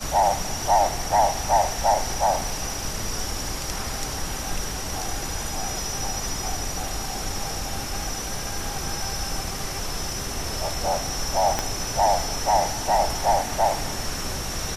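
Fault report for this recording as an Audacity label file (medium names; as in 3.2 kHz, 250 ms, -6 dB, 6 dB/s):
11.590000	11.590000	pop -8 dBFS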